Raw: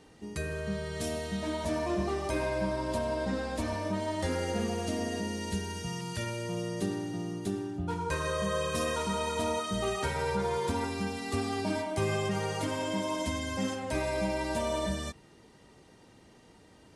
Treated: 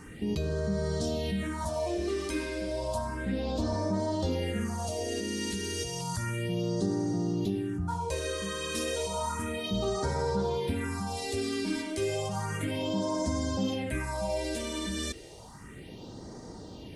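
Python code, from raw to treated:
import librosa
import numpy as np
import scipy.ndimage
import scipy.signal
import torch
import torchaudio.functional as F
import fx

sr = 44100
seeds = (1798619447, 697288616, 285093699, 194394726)

p1 = fx.over_compress(x, sr, threshold_db=-42.0, ratio=-1.0)
p2 = x + F.gain(torch.from_numpy(p1), 2.0).numpy()
y = fx.phaser_stages(p2, sr, stages=4, low_hz=120.0, high_hz=2700.0, hz=0.32, feedback_pct=25)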